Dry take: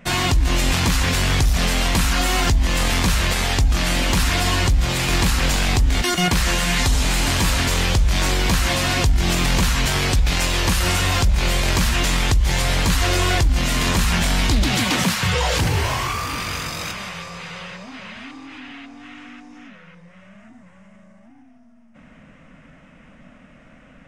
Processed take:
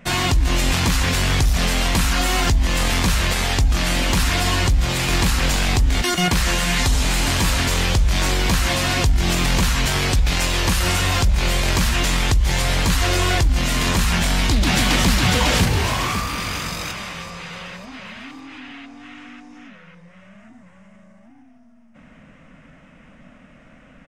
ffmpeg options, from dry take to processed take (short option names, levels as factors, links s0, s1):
-filter_complex "[0:a]asplit=2[s0][s1];[s1]afade=t=in:st=14.11:d=0.01,afade=t=out:st=15.1:d=0.01,aecho=0:1:550|1100|1650|2200|2750|3300:0.794328|0.357448|0.160851|0.0723832|0.0325724|0.0146576[s2];[s0][s2]amix=inputs=2:normalize=0"